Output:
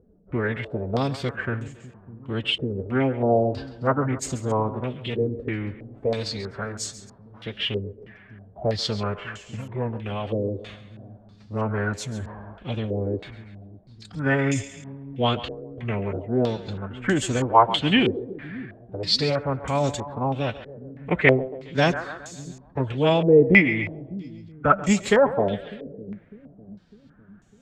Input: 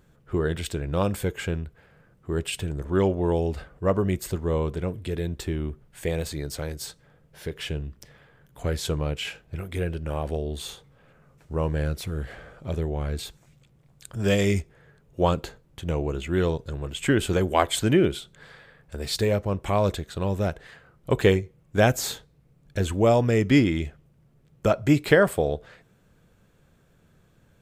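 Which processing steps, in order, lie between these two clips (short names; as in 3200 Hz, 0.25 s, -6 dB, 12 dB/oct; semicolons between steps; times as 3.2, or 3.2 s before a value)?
formant-preserving pitch shift +5.5 st; split-band echo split 310 Hz, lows 0.602 s, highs 0.137 s, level -14 dB; stepped low-pass 3.1 Hz 450–6900 Hz; gain -1 dB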